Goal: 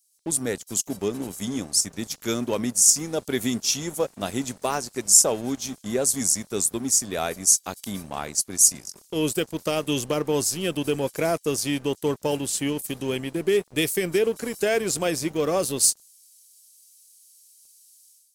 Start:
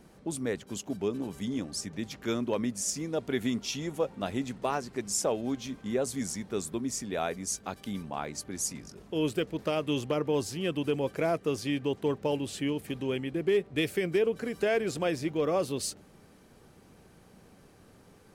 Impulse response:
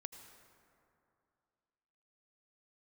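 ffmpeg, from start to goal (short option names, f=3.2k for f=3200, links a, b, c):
-filter_complex "[0:a]acrossover=split=5700[a][b];[a]aeval=exprs='sgn(val(0))*max(abs(val(0))-0.00501,0)':c=same[c];[b]dynaudnorm=f=110:g=5:m=13.5dB[d];[c][d]amix=inputs=2:normalize=0,volume=5dB"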